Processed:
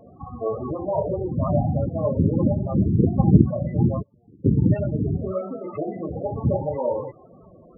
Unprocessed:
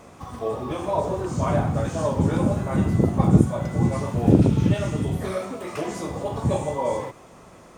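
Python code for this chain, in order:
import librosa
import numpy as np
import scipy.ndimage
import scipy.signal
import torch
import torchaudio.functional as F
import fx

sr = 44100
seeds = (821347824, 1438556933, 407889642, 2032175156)

y = fx.gate_flip(x, sr, shuts_db=-18.0, range_db=-37, at=(4.01, 4.44), fade=0.02)
y = fx.notch(y, sr, hz=980.0, q=13.0)
y = fx.spec_topn(y, sr, count=16)
y = y * 10.0 ** (1.5 / 20.0)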